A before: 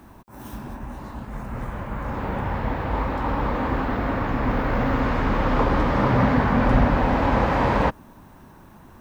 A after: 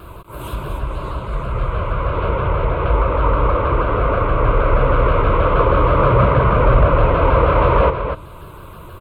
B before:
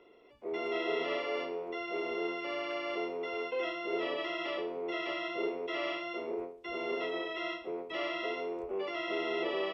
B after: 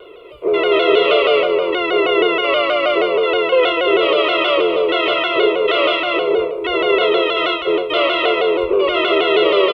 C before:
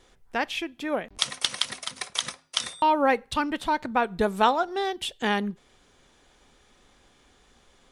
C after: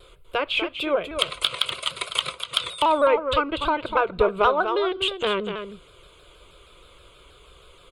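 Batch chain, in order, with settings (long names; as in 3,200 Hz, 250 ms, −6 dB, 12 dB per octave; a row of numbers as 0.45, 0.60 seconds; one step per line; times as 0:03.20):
treble cut that deepens with the level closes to 2,300 Hz, closed at −21.5 dBFS
in parallel at +1 dB: downward compressor, threshold −32 dBFS
on the sum: phaser with its sweep stopped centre 1,200 Hz, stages 8
harmonic generator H 5 −22 dB, 8 −38 dB, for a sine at −3.5 dBFS
on a send: single-tap delay 246 ms −8 dB
on the sum: pitch modulation by a square or saw wave saw down 6.3 Hz, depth 100 cents
normalise the peak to −1.5 dBFS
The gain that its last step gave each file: +5.0, +13.5, +1.5 decibels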